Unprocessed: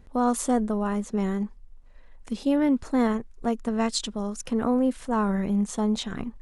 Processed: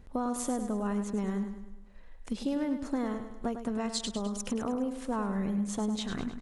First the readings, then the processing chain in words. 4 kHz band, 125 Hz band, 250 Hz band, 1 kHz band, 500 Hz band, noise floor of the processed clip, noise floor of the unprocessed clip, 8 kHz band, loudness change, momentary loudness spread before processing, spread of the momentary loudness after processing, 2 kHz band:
−5.0 dB, −5.5 dB, −7.0 dB, −8.0 dB, −7.5 dB, −48 dBFS, −49 dBFS, −4.5 dB, −7.0 dB, 8 LU, 5 LU, −7.0 dB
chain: downward compressor, threshold −28 dBFS, peak gain reduction 10.5 dB
on a send: repeating echo 103 ms, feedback 50%, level −9 dB
on the sum: level −1 dB

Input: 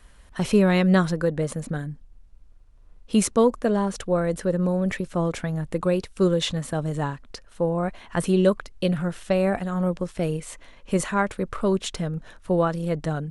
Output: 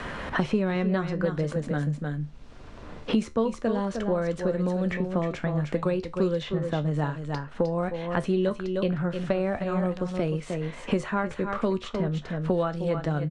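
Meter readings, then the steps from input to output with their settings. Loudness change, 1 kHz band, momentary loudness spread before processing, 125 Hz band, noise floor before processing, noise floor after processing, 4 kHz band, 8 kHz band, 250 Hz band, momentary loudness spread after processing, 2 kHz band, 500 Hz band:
−3.5 dB, −3.0 dB, 10 LU, −2.0 dB, −51 dBFS, −43 dBFS, −6.5 dB, below −10 dB, −3.5 dB, 4 LU, −2.5 dB, −3.0 dB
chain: high-frequency loss of the air 120 metres
tuned comb filter 74 Hz, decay 0.2 s, harmonics all, mix 60%
on a send: single-tap delay 307 ms −10 dB
on the sum: multiband upward and downward compressor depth 100%

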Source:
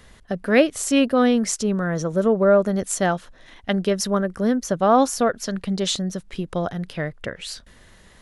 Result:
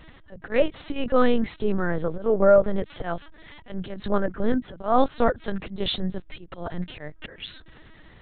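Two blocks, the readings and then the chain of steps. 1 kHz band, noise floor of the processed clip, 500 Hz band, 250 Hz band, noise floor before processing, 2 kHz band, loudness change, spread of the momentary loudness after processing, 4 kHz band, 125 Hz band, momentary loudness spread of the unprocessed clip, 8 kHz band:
−4.0 dB, −50 dBFS, −2.5 dB, −6.5 dB, −51 dBFS, −5.5 dB, −3.5 dB, 18 LU, −5.0 dB, −5.5 dB, 13 LU, below −40 dB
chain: mains hum 50 Hz, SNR 31 dB
volume swells 186 ms
linear-prediction vocoder at 8 kHz pitch kept

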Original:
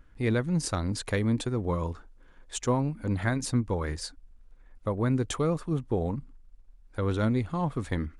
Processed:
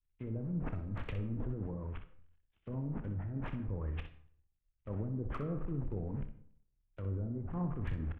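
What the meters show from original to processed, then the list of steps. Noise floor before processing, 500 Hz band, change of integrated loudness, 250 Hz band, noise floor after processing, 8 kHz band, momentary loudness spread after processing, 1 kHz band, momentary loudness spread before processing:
−56 dBFS, −14.5 dB, −10.5 dB, −11.0 dB, −80 dBFS, below −40 dB, 7 LU, −15.0 dB, 10 LU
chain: linear delta modulator 16 kbit/s, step −37.5 dBFS
noise gate −36 dBFS, range −16 dB
treble cut that deepens with the level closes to 620 Hz, closed at −24 dBFS
low-shelf EQ 210 Hz +11.5 dB
harmonic and percussive parts rebalanced percussive +3 dB
downward compressor 1.5 to 1, threshold −43 dBFS, peak gain reduction 11 dB
brickwall limiter −28 dBFS, peak gain reduction 10 dB
output level in coarse steps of 23 dB
hard clipping −39 dBFS, distortion −36 dB
ambience of single reflections 29 ms −13 dB, 62 ms −9 dB
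comb and all-pass reverb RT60 0.96 s, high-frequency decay 0.5×, pre-delay 45 ms, DRR 11.5 dB
multiband upward and downward expander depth 100%
level +8.5 dB

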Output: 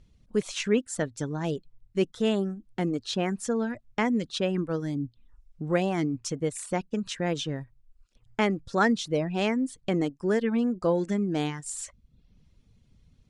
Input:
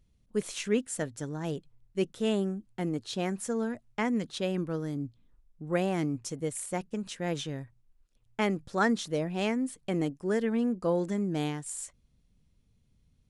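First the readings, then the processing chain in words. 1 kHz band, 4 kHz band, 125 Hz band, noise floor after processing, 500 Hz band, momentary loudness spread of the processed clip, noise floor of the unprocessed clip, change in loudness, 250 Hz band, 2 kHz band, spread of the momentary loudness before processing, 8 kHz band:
+3.5 dB, +4.5 dB, +3.0 dB, −66 dBFS, +3.5 dB, 8 LU, −69 dBFS, +3.0 dB, +3.0 dB, +3.5 dB, 9 LU, +1.5 dB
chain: low-pass filter 7,100 Hz 12 dB per octave
reverb reduction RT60 0.6 s
in parallel at +2 dB: downward compressor, threshold −41 dBFS, peak gain reduction 18 dB
on the sum: level +2 dB

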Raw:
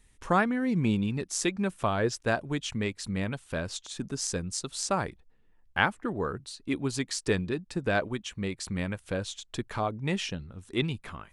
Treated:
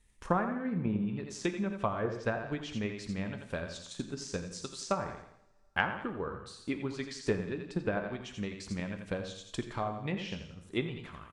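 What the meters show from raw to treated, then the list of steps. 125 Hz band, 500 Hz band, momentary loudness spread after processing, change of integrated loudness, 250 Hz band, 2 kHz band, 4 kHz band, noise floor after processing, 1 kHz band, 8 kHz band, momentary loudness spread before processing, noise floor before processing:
−5.5 dB, −4.0 dB, 8 LU, −5.0 dB, −4.5 dB, −5.5 dB, −7.5 dB, −63 dBFS, −5.0 dB, −11.5 dB, 9 LU, −62 dBFS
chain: on a send: repeating echo 85 ms, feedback 37%, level −7.5 dB
on the sum: treble cut that deepens with the level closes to 1,500 Hz, closed at −22 dBFS
transient designer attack +7 dB, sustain +3 dB
coupled-rooms reverb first 0.69 s, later 3.1 s, from −27 dB, DRR 8.5 dB
level −8.5 dB

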